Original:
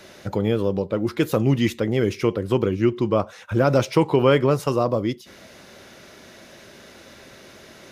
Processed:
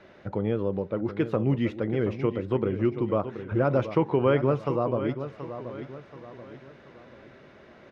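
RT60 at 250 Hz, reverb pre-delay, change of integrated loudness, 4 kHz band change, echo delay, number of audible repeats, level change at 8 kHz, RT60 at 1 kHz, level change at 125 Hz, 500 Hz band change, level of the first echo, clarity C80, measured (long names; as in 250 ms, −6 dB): no reverb audible, no reverb audible, −5.5 dB, −13.5 dB, 729 ms, 4, below −25 dB, no reverb audible, −5.0 dB, −5.0 dB, −11.0 dB, no reverb audible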